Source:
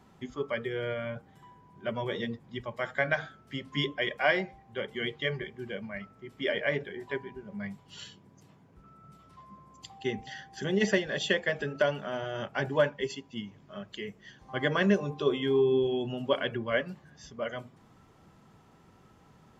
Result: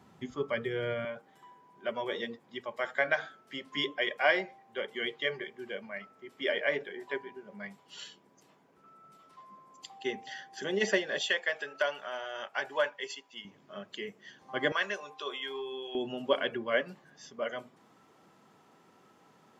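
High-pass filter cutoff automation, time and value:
85 Hz
from 0:01.05 340 Hz
from 0:11.21 720 Hz
from 0:13.45 250 Hz
from 0:14.72 930 Hz
from 0:15.95 260 Hz

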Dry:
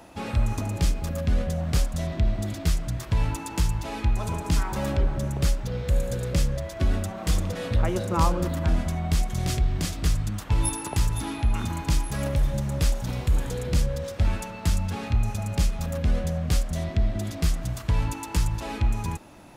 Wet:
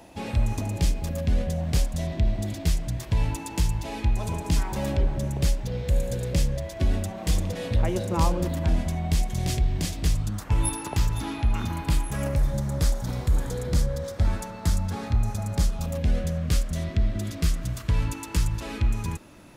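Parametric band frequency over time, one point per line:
parametric band −8 dB 0.5 octaves
0:10.10 1,300 Hz
0:10.86 9,700 Hz
0:11.56 9,700 Hz
0:12.52 2,700 Hz
0:15.61 2,700 Hz
0:16.31 790 Hz

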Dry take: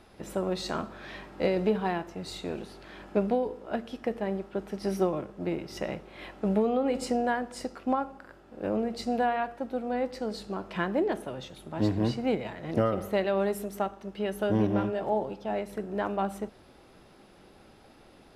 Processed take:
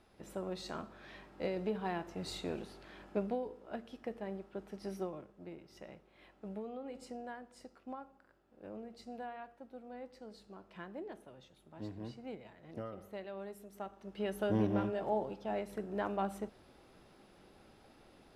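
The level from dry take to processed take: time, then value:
0:01.72 −10.5 dB
0:02.25 −3 dB
0:03.49 −11 dB
0:04.77 −11 dB
0:05.54 −18 dB
0:13.64 −18 dB
0:14.21 −6 dB

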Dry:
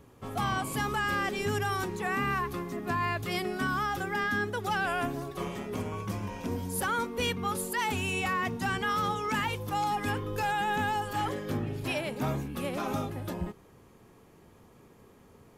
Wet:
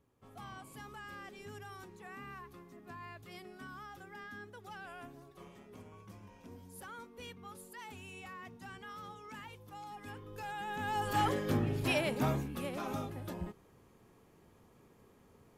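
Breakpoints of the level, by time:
0:09.86 −18.5 dB
0:10.79 −10 dB
0:11.10 +0.5 dB
0:12.14 +0.5 dB
0:12.72 −6.5 dB

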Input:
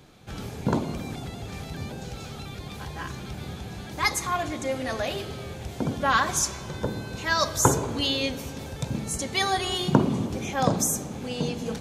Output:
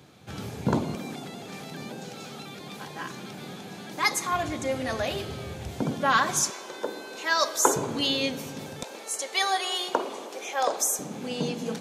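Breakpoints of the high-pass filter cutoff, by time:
high-pass filter 24 dB per octave
81 Hz
from 0:00.95 170 Hz
from 0:04.33 58 Hz
from 0:05.82 130 Hz
from 0:06.50 320 Hz
from 0:07.76 130 Hz
from 0:08.83 440 Hz
from 0:10.99 160 Hz

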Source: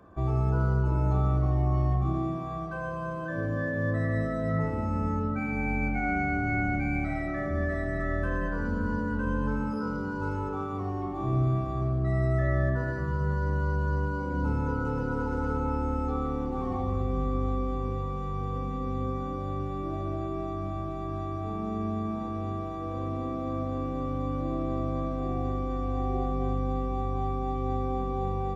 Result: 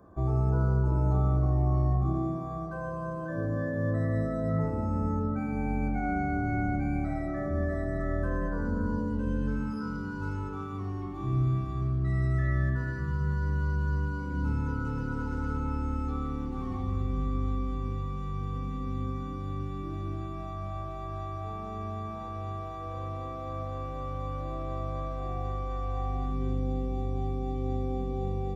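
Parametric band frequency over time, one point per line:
parametric band −14 dB 1.2 octaves
0:08.80 2,700 Hz
0:09.72 620 Hz
0:20.10 620 Hz
0:20.80 260 Hz
0:25.99 260 Hz
0:26.63 1,200 Hz

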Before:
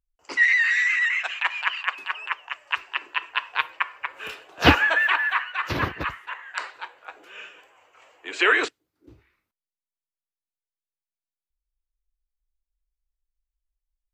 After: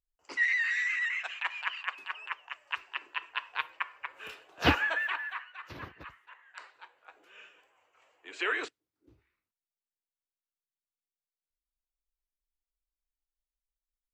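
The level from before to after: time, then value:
0:04.87 −9 dB
0:05.65 −18.5 dB
0:06.37 −18.5 dB
0:07.24 −12 dB

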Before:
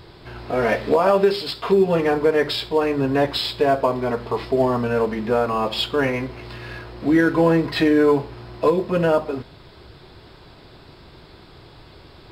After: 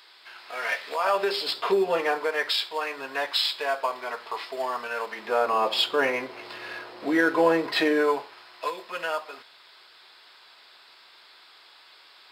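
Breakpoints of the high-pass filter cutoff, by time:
0:00.90 1,500 Hz
0:01.53 400 Hz
0:02.50 1,100 Hz
0:05.07 1,100 Hz
0:05.52 480 Hz
0:07.92 480 Hz
0:08.44 1,300 Hz

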